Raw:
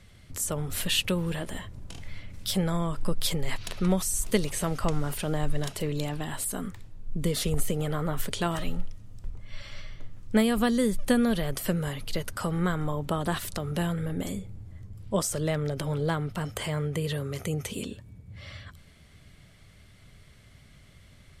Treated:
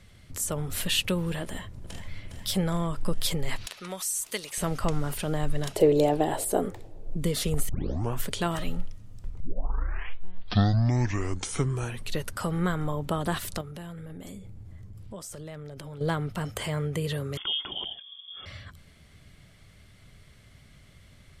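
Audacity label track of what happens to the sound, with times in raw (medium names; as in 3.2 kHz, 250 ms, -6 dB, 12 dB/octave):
1.430000	2.060000	echo throw 410 ms, feedback 65%, level -9 dB
3.660000	4.580000	high-pass 1.4 kHz 6 dB/octave
5.760000	7.160000	high-order bell 510 Hz +14.5 dB
7.690000	7.690000	tape start 0.52 s
9.400000	9.400000	tape start 2.94 s
13.610000	16.010000	compression 4:1, threshold -39 dBFS
17.370000	18.460000	frequency inversion carrier 3.4 kHz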